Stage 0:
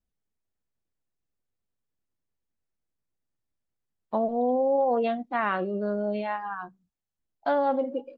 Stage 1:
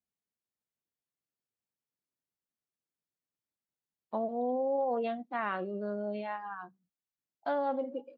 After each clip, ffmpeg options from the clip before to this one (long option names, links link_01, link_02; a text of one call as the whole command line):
ffmpeg -i in.wav -af "highpass=130,volume=-7dB" out.wav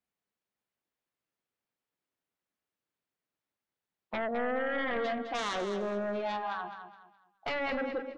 ffmpeg -i in.wav -af "bass=frequency=250:gain=-5,treble=frequency=4000:gain=-11,aeval=exprs='0.0841*sin(PI/2*3.55*val(0)/0.0841)':channel_layout=same,aecho=1:1:209|418|627|836:0.355|0.11|0.0341|0.0106,volume=-8dB" out.wav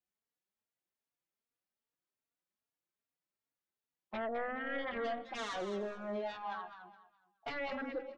ffmpeg -i in.wav -filter_complex "[0:a]asplit=2[link_01][link_02];[link_02]adelay=3.6,afreqshift=2.5[link_03];[link_01][link_03]amix=inputs=2:normalize=1,volume=-3.5dB" out.wav